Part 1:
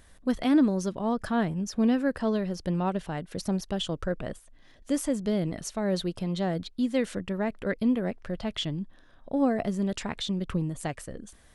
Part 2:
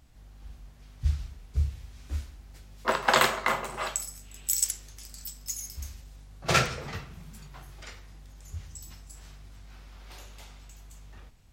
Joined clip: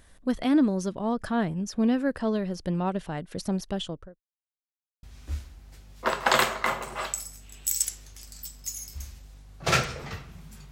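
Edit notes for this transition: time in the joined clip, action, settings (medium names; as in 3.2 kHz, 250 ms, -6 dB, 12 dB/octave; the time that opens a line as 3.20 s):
part 1
3.72–4.21 s: studio fade out
4.21–5.03 s: mute
5.03 s: go over to part 2 from 1.85 s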